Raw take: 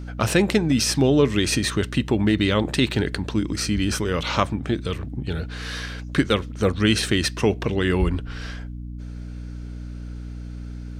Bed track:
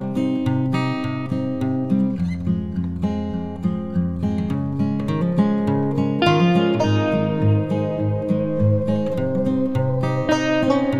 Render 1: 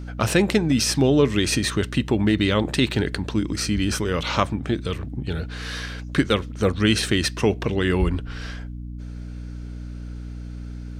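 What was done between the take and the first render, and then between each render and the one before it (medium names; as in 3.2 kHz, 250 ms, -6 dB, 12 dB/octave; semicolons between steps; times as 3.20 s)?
no audible change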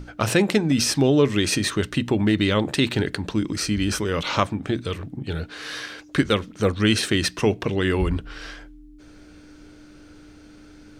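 hum notches 60/120/180/240 Hz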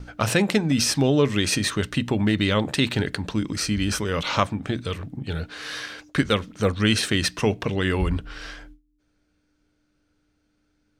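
gate with hold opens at -33 dBFS; peaking EQ 350 Hz -5 dB 0.5 oct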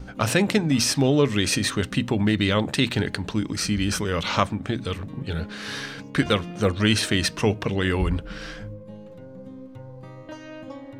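add bed track -20.5 dB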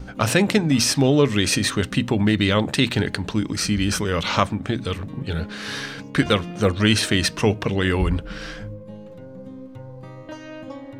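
trim +2.5 dB; peak limiter -3 dBFS, peak gain reduction 1 dB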